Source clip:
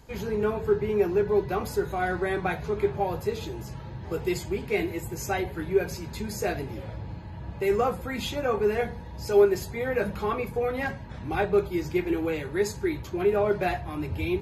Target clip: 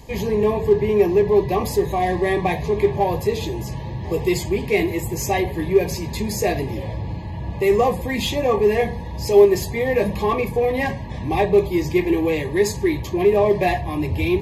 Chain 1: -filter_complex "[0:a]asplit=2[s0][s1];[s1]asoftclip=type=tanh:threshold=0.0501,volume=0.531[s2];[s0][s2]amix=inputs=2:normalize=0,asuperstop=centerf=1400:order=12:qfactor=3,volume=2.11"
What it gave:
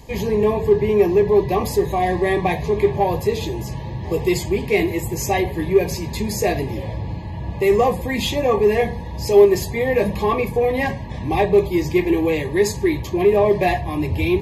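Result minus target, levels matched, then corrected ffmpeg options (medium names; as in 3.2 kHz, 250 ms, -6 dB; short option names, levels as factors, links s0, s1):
saturation: distortion -4 dB
-filter_complex "[0:a]asplit=2[s0][s1];[s1]asoftclip=type=tanh:threshold=0.0211,volume=0.531[s2];[s0][s2]amix=inputs=2:normalize=0,asuperstop=centerf=1400:order=12:qfactor=3,volume=2.11"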